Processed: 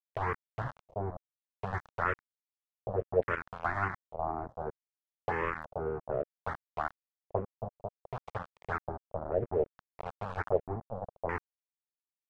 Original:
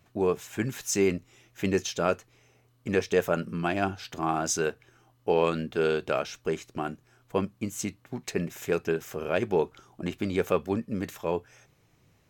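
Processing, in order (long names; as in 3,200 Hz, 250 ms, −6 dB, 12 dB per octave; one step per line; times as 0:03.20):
compressor on every frequency bin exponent 0.6
parametric band 480 Hz −15 dB 1.1 octaves
in parallel at +2 dB: downward compressor 8 to 1, threshold −42 dBFS, peak gain reduction 19 dB
on the sum: drawn EQ curve 120 Hz 0 dB, 220 Hz −27 dB, 450 Hz +5 dB, 880 Hz −1 dB, 2,800 Hz −21 dB, 10,000 Hz −10 dB, 16,000 Hz −26 dB
harmonic generator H 7 −31 dB, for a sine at −8 dBFS
centre clipping without the shift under −32.5 dBFS
auto-filter low-pass square 0.62 Hz 600–1,900 Hz
phaser swept by the level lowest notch 230 Hz, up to 4,000 Hz, full sweep at −17 dBFS
level +3 dB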